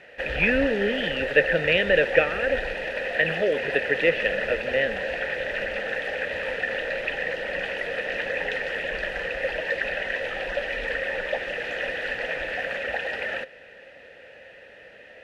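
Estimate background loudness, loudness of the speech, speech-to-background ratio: -28.0 LUFS, -24.0 LUFS, 4.0 dB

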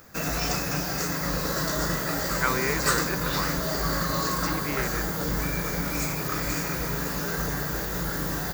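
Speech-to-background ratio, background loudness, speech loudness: -4.5 dB, -27.0 LUFS, -31.5 LUFS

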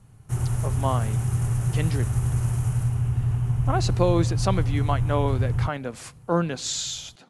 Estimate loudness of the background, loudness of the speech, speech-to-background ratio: -25.5 LUFS, -28.0 LUFS, -2.5 dB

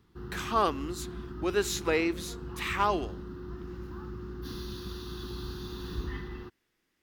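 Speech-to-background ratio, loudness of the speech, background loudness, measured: 10.5 dB, -30.5 LUFS, -41.0 LUFS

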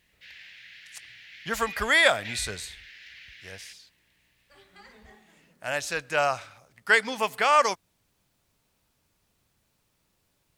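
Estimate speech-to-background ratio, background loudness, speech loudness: 19.5 dB, -44.0 LUFS, -24.5 LUFS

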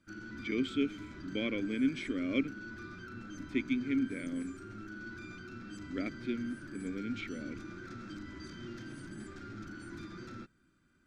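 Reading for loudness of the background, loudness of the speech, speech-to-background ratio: -46.5 LUFS, -36.0 LUFS, 10.5 dB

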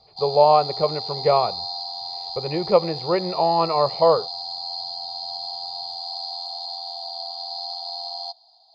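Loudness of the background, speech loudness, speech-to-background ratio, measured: -29.5 LUFS, -20.5 LUFS, 9.0 dB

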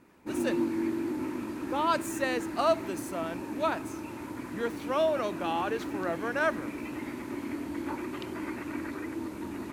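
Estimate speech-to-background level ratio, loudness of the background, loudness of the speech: 4.5 dB, -36.0 LUFS, -31.5 LUFS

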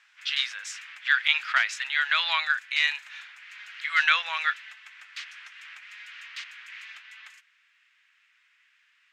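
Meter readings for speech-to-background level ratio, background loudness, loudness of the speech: 17.5 dB, -42.0 LUFS, -24.5 LUFS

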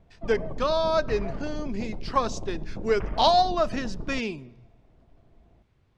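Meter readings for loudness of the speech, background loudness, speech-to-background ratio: -26.5 LUFS, -38.5 LUFS, 12.0 dB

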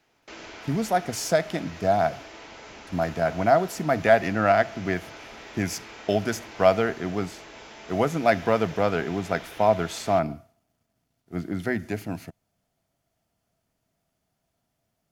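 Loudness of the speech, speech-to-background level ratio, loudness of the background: -25.0 LUFS, 17.5 dB, -42.5 LUFS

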